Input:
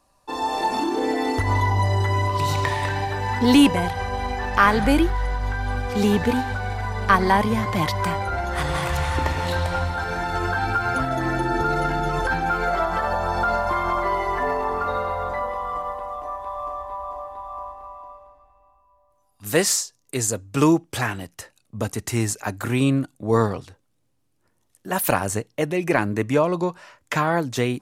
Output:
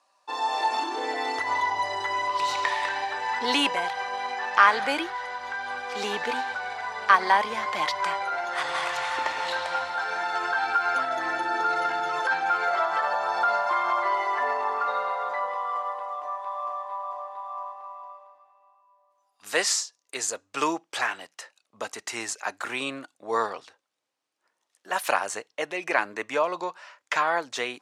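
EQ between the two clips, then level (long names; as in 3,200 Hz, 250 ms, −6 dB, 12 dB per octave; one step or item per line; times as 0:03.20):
band-pass filter 720–6,400 Hz
0.0 dB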